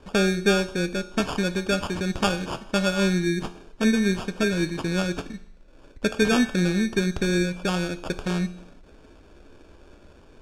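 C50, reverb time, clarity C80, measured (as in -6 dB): 14.0 dB, 0.70 s, 17.0 dB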